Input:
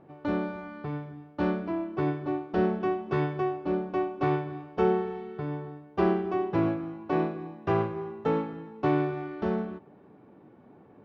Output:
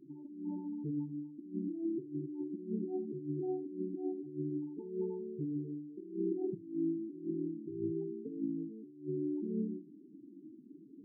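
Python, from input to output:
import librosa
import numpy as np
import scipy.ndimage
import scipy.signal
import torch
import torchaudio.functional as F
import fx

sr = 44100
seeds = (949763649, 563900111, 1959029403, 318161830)

p1 = fx.formant_cascade(x, sr, vowel='u')
p2 = fx.low_shelf(p1, sr, hz=200.0, db=5.5)
p3 = fx.over_compress(p2, sr, threshold_db=-37.0, ratio=-0.5)
p4 = fx.hum_notches(p3, sr, base_hz=60, count=7)
p5 = fx.spec_topn(p4, sr, count=8)
p6 = p5 + fx.echo_single(p5, sr, ms=73, db=-23.5, dry=0)
y = F.gain(torch.from_numpy(p6), 1.0).numpy()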